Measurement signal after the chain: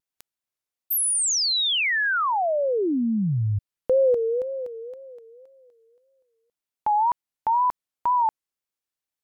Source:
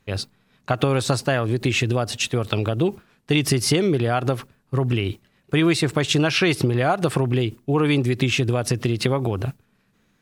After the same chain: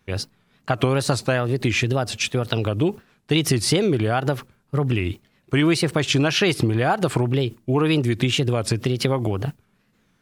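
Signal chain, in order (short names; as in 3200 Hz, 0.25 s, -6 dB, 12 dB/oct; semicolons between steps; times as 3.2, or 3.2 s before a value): wow and flutter 150 cents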